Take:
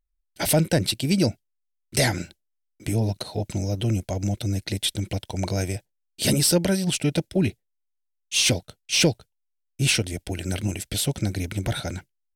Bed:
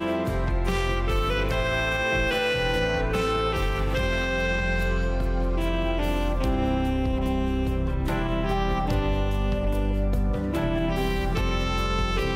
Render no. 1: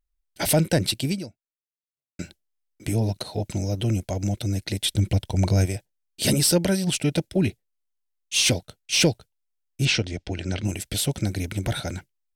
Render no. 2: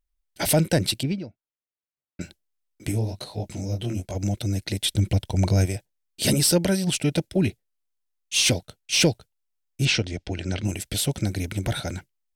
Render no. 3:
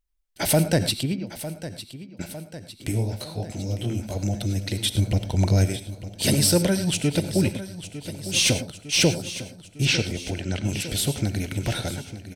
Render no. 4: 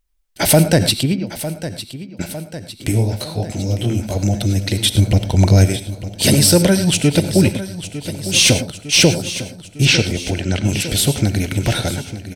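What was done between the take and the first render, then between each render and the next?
1.07–2.19 fade out exponential; 4.93–5.66 low shelf 200 Hz +9.5 dB; 9.85–10.65 LPF 6000 Hz 24 dB/oct
1.03–2.21 air absorption 250 m; 2.91–4.14 detuned doubles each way 52 cents -> 37 cents
feedback echo 0.904 s, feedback 60%, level -13.5 dB; non-linear reverb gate 0.13 s rising, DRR 11 dB
gain +8.5 dB; limiter -2 dBFS, peak gain reduction 2 dB

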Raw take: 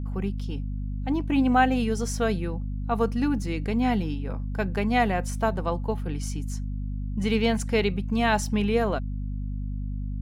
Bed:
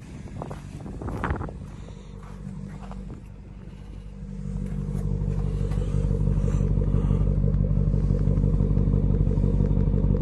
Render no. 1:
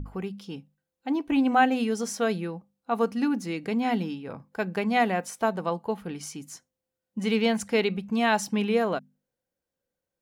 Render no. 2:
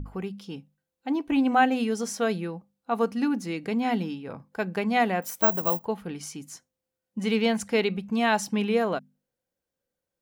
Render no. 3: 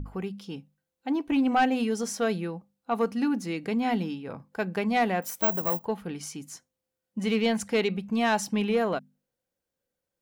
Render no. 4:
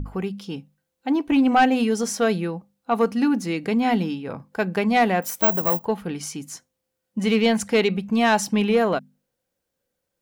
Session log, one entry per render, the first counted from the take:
notches 50/100/150/200/250 Hz
5.22–5.85 careless resampling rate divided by 2×, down none, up zero stuff
soft clip -15 dBFS, distortion -17 dB
gain +6 dB

